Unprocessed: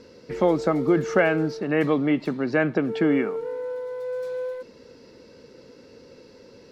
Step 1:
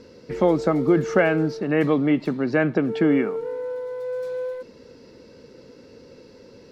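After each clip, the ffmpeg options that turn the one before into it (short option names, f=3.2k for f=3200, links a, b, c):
-af "lowshelf=f=380:g=3.5"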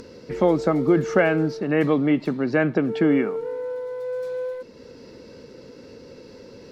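-af "acompressor=mode=upward:threshold=-37dB:ratio=2.5"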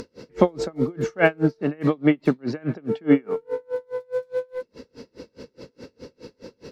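-af "aeval=exprs='val(0)*pow(10,-35*(0.5-0.5*cos(2*PI*4.8*n/s))/20)':c=same,volume=6.5dB"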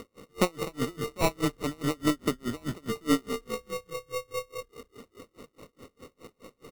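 -filter_complex "[0:a]aeval=exprs='if(lt(val(0),0),0.708*val(0),val(0))':c=same,asplit=7[a][b][c][d][e][f][g];[b]adelay=200,afreqshift=-31,volume=-14dB[h];[c]adelay=400,afreqshift=-62,volume=-19.2dB[i];[d]adelay=600,afreqshift=-93,volume=-24.4dB[j];[e]adelay=800,afreqshift=-124,volume=-29.6dB[k];[f]adelay=1000,afreqshift=-155,volume=-34.8dB[l];[g]adelay=1200,afreqshift=-186,volume=-40dB[m];[a][h][i][j][k][l][m]amix=inputs=7:normalize=0,acrusher=samples=27:mix=1:aa=0.000001,volume=-6.5dB"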